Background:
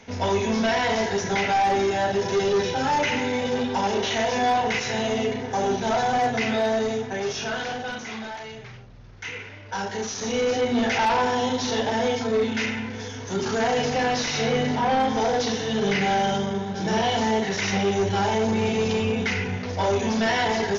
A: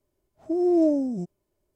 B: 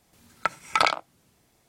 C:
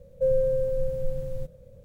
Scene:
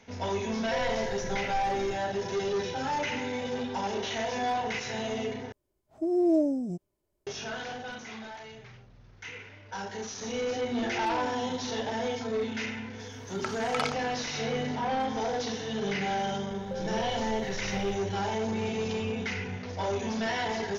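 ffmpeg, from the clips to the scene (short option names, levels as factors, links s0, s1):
-filter_complex "[3:a]asplit=2[s0][s1];[1:a]asplit=2[s2][s3];[0:a]volume=0.398[s4];[s1]acompressor=threshold=0.0251:ratio=6:attack=3.2:release=140:knee=1:detection=peak[s5];[s4]asplit=2[s6][s7];[s6]atrim=end=5.524[s8];[s2]atrim=end=1.75,asetpts=PTS-STARTPTS,volume=0.668[s9];[s7]atrim=start=7.266[s10];[s0]atrim=end=1.84,asetpts=PTS-STARTPTS,volume=0.282,afade=t=in:d=0.004:c=hsin,afade=t=out:st=1.836:d=0.004:c=hsin,adelay=500[s11];[s3]atrim=end=1.75,asetpts=PTS-STARTPTS,volume=0.126,afade=t=in:d=0.004:c=hsin,afade=t=out:st=1.746:d=0.004:c=hsin,adelay=10320[s12];[2:a]atrim=end=1.68,asetpts=PTS-STARTPTS,volume=0.299,afade=t=in:d=0.004:c=hsin,afade=t=out:st=1.676:d=0.004:c=hsin,adelay=12990[s13];[s5]atrim=end=1.84,asetpts=PTS-STARTPTS,volume=0.708,afade=t=in:d=0.004:c=hsin,afade=t=out:st=1.836:d=0.004:c=hsin,adelay=16500[s14];[s8][s9]acrossfade=d=0.004:c1=hsin:c2=hsin[s15];[s15][s10]acrossfade=d=0.004:c1=hsin:c2=hsin[s16];[s16][s11][s12][s13][s14]amix=inputs=5:normalize=0"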